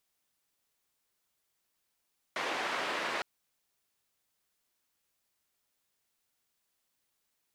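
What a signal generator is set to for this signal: noise band 360–2000 Hz, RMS -34.5 dBFS 0.86 s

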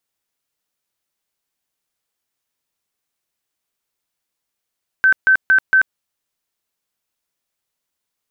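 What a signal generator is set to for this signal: tone bursts 1540 Hz, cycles 132, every 0.23 s, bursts 4, -8.5 dBFS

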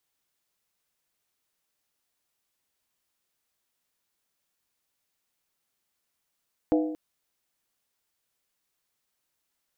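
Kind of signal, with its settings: skin hit length 0.23 s, lowest mode 310 Hz, decay 0.87 s, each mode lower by 5 dB, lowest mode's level -18.5 dB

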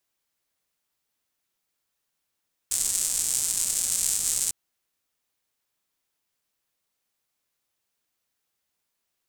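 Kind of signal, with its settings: rain from filtered ticks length 1.80 s, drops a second 290, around 7900 Hz, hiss -21 dB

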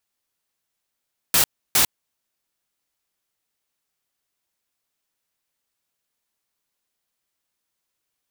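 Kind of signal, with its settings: noise bursts white, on 0.10 s, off 0.31 s, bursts 2, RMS -16.5 dBFS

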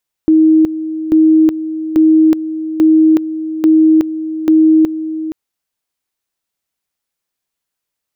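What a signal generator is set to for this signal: two-level tone 316 Hz -5 dBFS, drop 12.5 dB, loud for 0.37 s, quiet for 0.47 s, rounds 6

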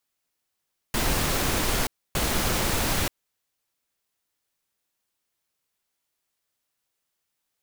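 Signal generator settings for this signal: noise bursts pink, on 0.93 s, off 0.28 s, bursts 2, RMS -24.5 dBFS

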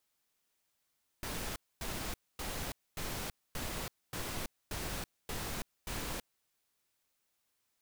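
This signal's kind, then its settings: noise bursts pink, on 0.33 s, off 0.25 s, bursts 9, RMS -39 dBFS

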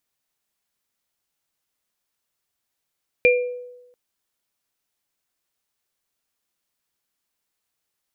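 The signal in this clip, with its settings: sine partials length 0.69 s, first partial 493 Hz, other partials 2390 Hz, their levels 0 dB, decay 0.99 s, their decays 0.37 s, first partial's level -12 dB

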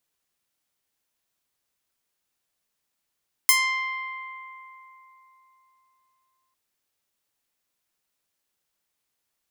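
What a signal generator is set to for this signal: plucked string C6, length 3.05 s, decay 3.76 s, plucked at 0.26, bright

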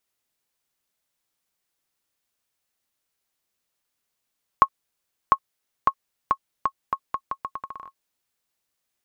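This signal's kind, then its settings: bouncing ball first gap 0.70 s, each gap 0.79, 1090 Hz, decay 65 ms -2.5 dBFS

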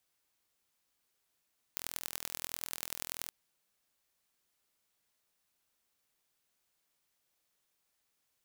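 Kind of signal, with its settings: pulse train 41.5/s, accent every 4, -8 dBFS 1.54 s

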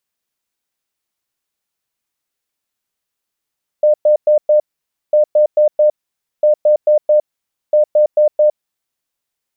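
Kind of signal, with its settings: beep pattern sine 603 Hz, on 0.11 s, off 0.11 s, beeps 4, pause 0.53 s, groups 4, -7 dBFS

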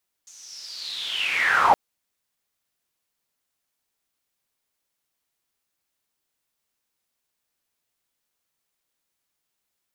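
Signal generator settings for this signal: swept filtered noise pink, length 1.47 s bandpass, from 6500 Hz, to 750 Hz, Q 8.5, linear, gain ramp +31.5 dB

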